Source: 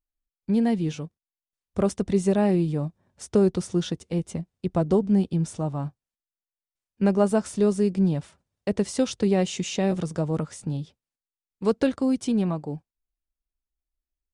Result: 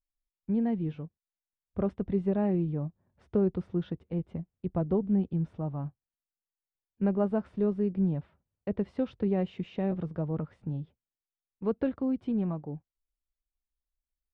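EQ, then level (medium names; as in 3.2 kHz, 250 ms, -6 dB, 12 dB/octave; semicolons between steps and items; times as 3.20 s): low-pass 3.5 kHz 6 dB/octave; distance through air 440 m; bass shelf 130 Hz +4.5 dB; -6.5 dB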